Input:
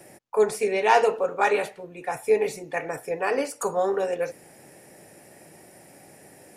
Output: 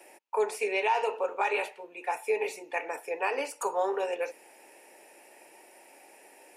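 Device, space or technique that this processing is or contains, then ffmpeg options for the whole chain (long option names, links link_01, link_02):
laptop speaker: -af "highpass=frequency=320:width=0.5412,highpass=frequency=320:width=1.3066,equalizer=frequency=910:width_type=o:width=0.24:gain=10.5,equalizer=frequency=2600:width_type=o:width=0.5:gain=10,alimiter=limit=-12dB:level=0:latency=1:release=204,volume=-5.5dB"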